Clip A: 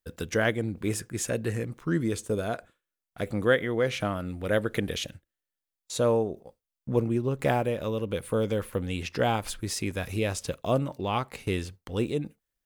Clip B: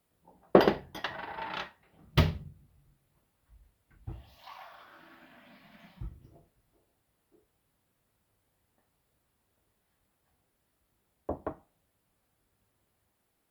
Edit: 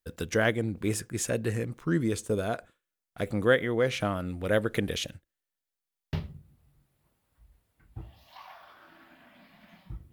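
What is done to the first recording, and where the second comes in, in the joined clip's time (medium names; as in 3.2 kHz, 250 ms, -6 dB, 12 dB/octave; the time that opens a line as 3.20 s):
clip A
5.77 s: stutter in place 0.09 s, 4 plays
6.13 s: go over to clip B from 2.24 s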